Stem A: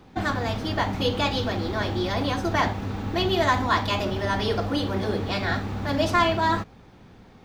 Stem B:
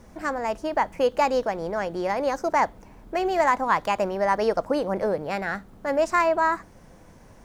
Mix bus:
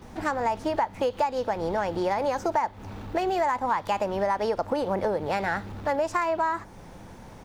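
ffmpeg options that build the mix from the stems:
ffmpeg -i stem1.wav -i stem2.wav -filter_complex "[0:a]acompressor=threshold=-34dB:ratio=3,asoftclip=type=tanh:threshold=-36.5dB,volume=1dB[link_01];[1:a]equalizer=frequency=880:width=7.6:gain=9,adelay=17,volume=2.5dB[link_02];[link_01][link_02]amix=inputs=2:normalize=0,acompressor=threshold=-22dB:ratio=10" out.wav

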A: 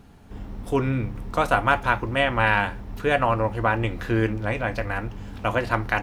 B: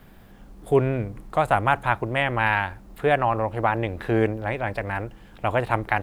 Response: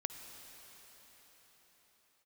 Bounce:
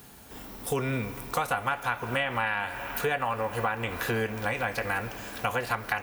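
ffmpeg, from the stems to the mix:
-filter_complex "[0:a]acrossover=split=3100[link_01][link_02];[link_02]acompressor=threshold=-45dB:ratio=4:attack=1:release=60[link_03];[link_01][link_03]amix=inputs=2:normalize=0,aemphasis=mode=production:type=riaa,volume=-2.5dB,asplit=2[link_04][link_05];[link_05]volume=-3.5dB[link_06];[1:a]highpass=frequency=41:width=0.5412,highpass=frequency=41:width=1.3066,volume=-1,volume=-5.5dB[link_07];[2:a]atrim=start_sample=2205[link_08];[link_06][link_08]afir=irnorm=-1:irlink=0[link_09];[link_04][link_07][link_09]amix=inputs=3:normalize=0,acompressor=threshold=-25dB:ratio=6"

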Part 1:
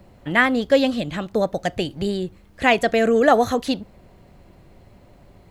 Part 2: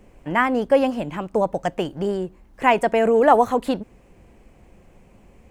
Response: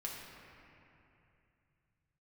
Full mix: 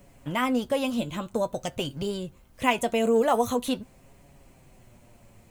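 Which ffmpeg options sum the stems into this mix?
-filter_complex "[0:a]lowpass=frequency=1200:poles=1,equalizer=frequency=410:width_type=o:width=0.43:gain=-7,volume=-2dB[link_01];[1:a]volume=-6dB,asplit=2[link_02][link_03];[link_03]apad=whole_len=242595[link_04];[link_01][link_04]sidechaincompress=threshold=-28dB:ratio=8:attack=16:release=113[link_05];[link_05][link_02]amix=inputs=2:normalize=0,flanger=delay=7.1:depth=1.8:regen=46:speed=0.47:shape=triangular,crystalizer=i=5:c=0"

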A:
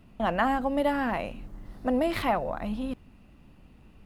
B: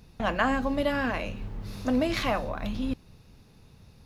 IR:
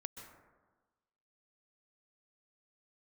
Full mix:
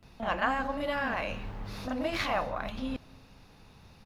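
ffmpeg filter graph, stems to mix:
-filter_complex "[0:a]acrossover=split=260[link_01][link_02];[link_02]acompressor=threshold=-28dB:ratio=6[link_03];[link_01][link_03]amix=inputs=2:normalize=0,volume=-8.5dB,asplit=2[link_04][link_05];[1:a]firequalizer=gain_entry='entry(260,0);entry(800,9);entry(8500,1)':delay=0.05:min_phase=1,adelay=28,volume=-4dB,asplit=2[link_06][link_07];[link_07]volume=-16.5dB[link_08];[link_05]apad=whole_len=184389[link_09];[link_06][link_09]sidechaincompress=threshold=-43dB:ratio=8:attack=16:release=134[link_10];[2:a]atrim=start_sample=2205[link_11];[link_08][link_11]afir=irnorm=-1:irlink=0[link_12];[link_04][link_10][link_12]amix=inputs=3:normalize=0"

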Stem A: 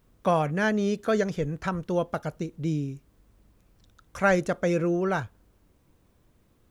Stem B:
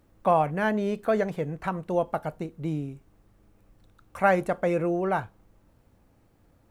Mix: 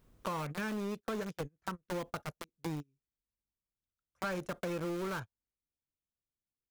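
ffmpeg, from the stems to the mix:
ffmpeg -i stem1.wav -i stem2.wav -filter_complex "[0:a]volume=-3dB[link_01];[1:a]aeval=exprs='val(0)*gte(abs(val(0)),0.0596)':channel_layout=same,equalizer=frequency=180:width=7.2:gain=-12,adelay=0.7,volume=-4.5dB,asplit=2[link_02][link_03];[link_03]apad=whole_len=295627[link_04];[link_01][link_04]sidechaingate=range=-36dB:threshold=-36dB:ratio=16:detection=peak[link_05];[link_05][link_02]amix=inputs=2:normalize=0,asoftclip=type=tanh:threshold=-21dB,acompressor=threshold=-35dB:ratio=6" out.wav

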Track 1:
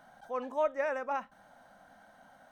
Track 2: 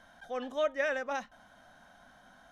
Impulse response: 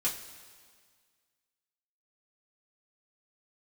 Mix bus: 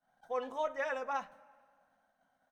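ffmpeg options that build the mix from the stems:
-filter_complex "[0:a]agate=range=-33dB:threshold=-47dB:ratio=3:detection=peak,volume=-3.5dB,asplit=3[link_01][link_02][link_03];[link_02]volume=-13dB[link_04];[1:a]volume=-1,adelay=3.1,volume=-8dB[link_05];[link_03]apad=whole_len=111244[link_06];[link_05][link_06]sidechaingate=range=-33dB:threshold=-47dB:ratio=16:detection=peak[link_07];[2:a]atrim=start_sample=2205[link_08];[link_04][link_08]afir=irnorm=-1:irlink=0[link_09];[link_01][link_07][link_09]amix=inputs=3:normalize=0"

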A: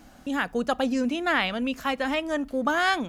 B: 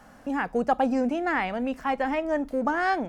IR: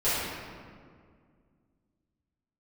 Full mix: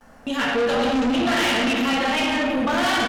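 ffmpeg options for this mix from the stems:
-filter_complex "[0:a]agate=range=-39dB:threshold=-45dB:ratio=16:detection=peak,equalizer=frequency=3100:width=1.4:gain=8,volume=2dB,asplit=2[link_01][link_02];[link_02]volume=-7.5dB[link_03];[1:a]adelay=9,volume=-3.5dB,asplit=3[link_04][link_05][link_06];[link_05]volume=-7.5dB[link_07];[link_06]apad=whole_len=136007[link_08];[link_01][link_08]sidechaincompress=threshold=-31dB:ratio=8:attack=16:release=390[link_09];[2:a]atrim=start_sample=2205[link_10];[link_03][link_07]amix=inputs=2:normalize=0[link_11];[link_11][link_10]afir=irnorm=-1:irlink=0[link_12];[link_09][link_04][link_12]amix=inputs=3:normalize=0,asoftclip=type=tanh:threshold=-18dB"

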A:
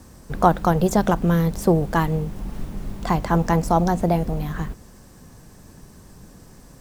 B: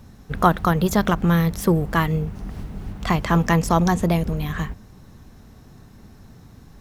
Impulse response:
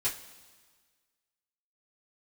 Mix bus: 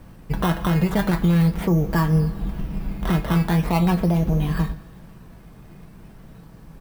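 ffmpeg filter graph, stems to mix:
-filter_complex "[0:a]volume=-4dB[link_01];[1:a]bandreject=frequency=2000:width=12,aecho=1:1:6.1:0.62,acrusher=samples=13:mix=1:aa=0.000001:lfo=1:lforange=13:lforate=0.4,volume=-3.5dB,asplit=2[link_02][link_03];[link_03]volume=-7dB[link_04];[2:a]atrim=start_sample=2205[link_05];[link_04][link_05]afir=irnorm=-1:irlink=0[link_06];[link_01][link_02][link_06]amix=inputs=3:normalize=0,equalizer=frequency=6900:width_type=o:width=1.3:gain=-10.5,alimiter=limit=-10.5dB:level=0:latency=1:release=216"

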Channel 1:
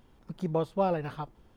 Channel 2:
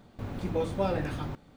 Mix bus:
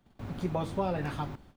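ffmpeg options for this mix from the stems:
ffmpeg -i stem1.wav -i stem2.wav -filter_complex "[0:a]volume=1.5dB[link_01];[1:a]adelay=3.7,volume=-2.5dB[link_02];[link_01][link_02]amix=inputs=2:normalize=0,agate=range=-13dB:threshold=-53dB:ratio=16:detection=peak,equalizer=frequency=480:width_type=o:width=0.36:gain=-5,acrossover=split=89|230[link_03][link_04][link_05];[link_03]acompressor=threshold=-45dB:ratio=4[link_06];[link_04]acompressor=threshold=-36dB:ratio=4[link_07];[link_05]acompressor=threshold=-28dB:ratio=4[link_08];[link_06][link_07][link_08]amix=inputs=3:normalize=0" out.wav

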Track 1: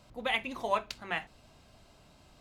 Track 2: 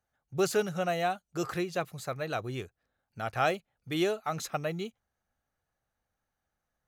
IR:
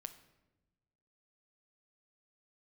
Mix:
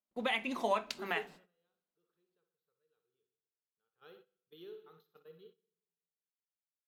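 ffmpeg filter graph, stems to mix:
-filter_complex "[0:a]agate=range=-26dB:threshold=-52dB:ratio=16:detection=peak,lowshelf=frequency=210:gain=-7.5,volume=0dB,asplit=3[link_01][link_02][link_03];[link_02]volume=-9.5dB[link_04];[1:a]firequalizer=gain_entry='entry(150,0);entry(250,-17);entry(450,11);entry(640,-21);entry(910,-4);entry(1500,-2);entry(2200,-11);entry(3300,5);entry(7900,-30);entry(13000,9)':delay=0.05:min_phase=1,flanger=delay=10:depth=3.5:regen=-84:speed=0.45:shape=sinusoidal,adelay=600,volume=-8dB,afade=type=in:start_time=3.93:duration=0.2:silence=0.298538,asplit=3[link_05][link_06][link_07];[link_06]volume=-9dB[link_08];[link_07]volume=-22dB[link_09];[link_03]apad=whole_len=333933[link_10];[link_05][link_10]sidechaingate=range=-33dB:threshold=-53dB:ratio=16:detection=peak[link_11];[2:a]atrim=start_sample=2205[link_12];[link_04][link_08]amix=inputs=2:normalize=0[link_13];[link_13][link_12]afir=irnorm=-1:irlink=0[link_14];[link_09]aecho=0:1:62|124|186|248|310|372|434|496:1|0.55|0.303|0.166|0.0915|0.0503|0.0277|0.0152[link_15];[link_01][link_11][link_14][link_15]amix=inputs=4:normalize=0,agate=range=-15dB:threshold=-60dB:ratio=16:detection=peak,lowshelf=frequency=160:width_type=q:width=3:gain=-9,alimiter=limit=-20dB:level=0:latency=1:release=173"

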